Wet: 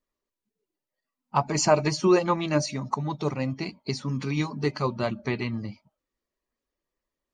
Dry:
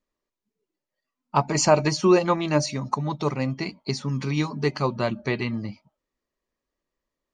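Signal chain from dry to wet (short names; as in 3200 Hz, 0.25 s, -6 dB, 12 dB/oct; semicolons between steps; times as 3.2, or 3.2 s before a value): bin magnitudes rounded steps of 15 dB; gain -2 dB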